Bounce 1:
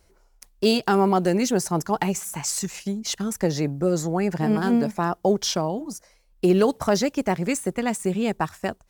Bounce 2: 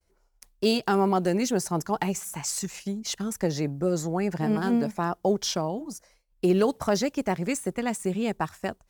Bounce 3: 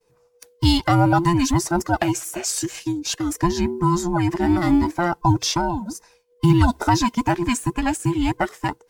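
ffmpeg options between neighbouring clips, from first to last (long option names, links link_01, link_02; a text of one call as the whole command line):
ffmpeg -i in.wav -af "agate=range=-33dB:threshold=-54dB:ratio=3:detection=peak,volume=-3.5dB" out.wav
ffmpeg -i in.wav -af "afftfilt=real='real(if(between(b,1,1008),(2*floor((b-1)/24)+1)*24-b,b),0)':imag='imag(if(between(b,1,1008),(2*floor((b-1)/24)+1)*24-b,b),0)*if(between(b,1,1008),-1,1)':win_size=2048:overlap=0.75,equalizer=frequency=14000:width_type=o:width=1.1:gain=-3,volume=7dB" -ar 48000 -c:a libmp3lame -b:a 80k out.mp3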